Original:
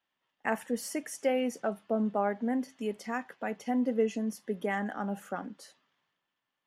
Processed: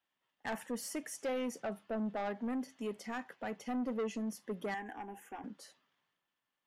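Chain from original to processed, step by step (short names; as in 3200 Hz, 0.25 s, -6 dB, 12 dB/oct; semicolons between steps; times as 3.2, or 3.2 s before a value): soft clip -28.5 dBFS, distortion -10 dB; 4.74–5.44 fixed phaser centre 870 Hz, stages 8; gain -3 dB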